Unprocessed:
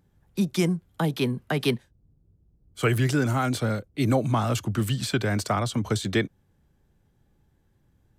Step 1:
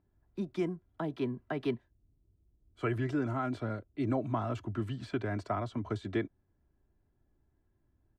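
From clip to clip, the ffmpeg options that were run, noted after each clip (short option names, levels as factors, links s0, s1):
-af "lowpass=1400,aemphasis=mode=production:type=75kf,aecho=1:1:3:0.51,volume=0.355"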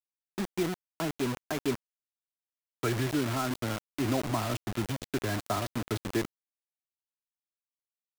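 -af "acrusher=bits=5:mix=0:aa=0.000001,volume=1.26"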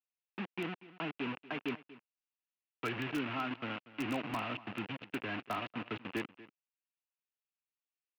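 -filter_complex "[0:a]highpass=200,equalizer=f=380:t=q:w=4:g=-7,equalizer=f=610:t=q:w=4:g=-6,equalizer=f=2700:t=q:w=4:g=10,lowpass=f=2900:w=0.5412,lowpass=f=2900:w=1.3066,aecho=1:1:238:0.126,asplit=2[s0][s1];[s1]aeval=exprs='(mod(13.3*val(0)+1,2)-1)/13.3':c=same,volume=0.398[s2];[s0][s2]amix=inputs=2:normalize=0,volume=0.447"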